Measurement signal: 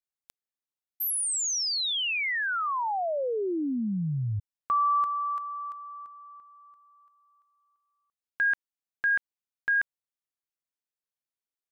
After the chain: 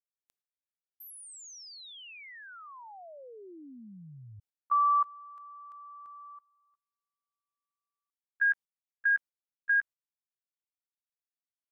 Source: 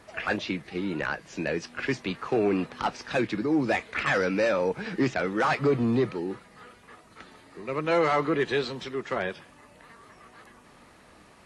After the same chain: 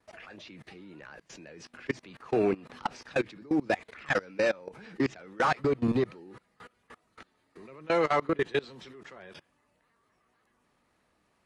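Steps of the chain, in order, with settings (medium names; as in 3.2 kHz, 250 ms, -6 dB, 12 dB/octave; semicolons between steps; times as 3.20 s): gate with hold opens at -47 dBFS, range -13 dB; level held to a coarse grid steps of 24 dB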